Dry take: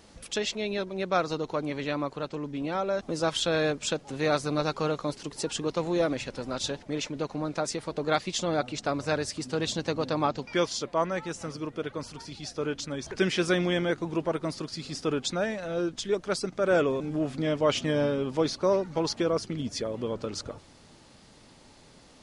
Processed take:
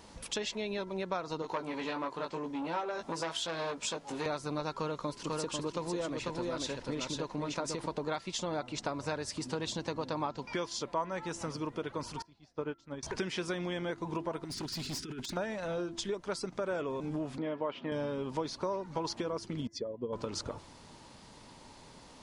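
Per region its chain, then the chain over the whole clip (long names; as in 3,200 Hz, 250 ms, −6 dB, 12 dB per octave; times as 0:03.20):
0:01.42–0:04.26: low-shelf EQ 160 Hz −10 dB + double-tracking delay 18 ms −4 dB + saturating transformer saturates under 1,800 Hz
0:04.77–0:07.86: parametric band 780 Hz −5 dB 0.37 octaves + single-tap delay 494 ms −4 dB
0:12.22–0:13.03: low-pass filter 2,300 Hz 6 dB per octave + expander for the loud parts 2.5 to 1, over −43 dBFS
0:14.44–0:15.37: elliptic band-stop filter 390–1,400 Hz + compressor whose output falls as the input rises −35 dBFS, ratio −0.5 + hard clipping −35 dBFS
0:17.38–0:17.92: high-pass filter 230 Hz + high-frequency loss of the air 400 metres
0:19.67–0:20.13: expanding power law on the bin magnitudes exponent 1.6 + expander for the loud parts 2.5 to 1, over −43 dBFS
whole clip: downward compressor, threshold −33 dBFS; parametric band 960 Hz +9.5 dB 0.25 octaves; hum removal 337.9 Hz, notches 6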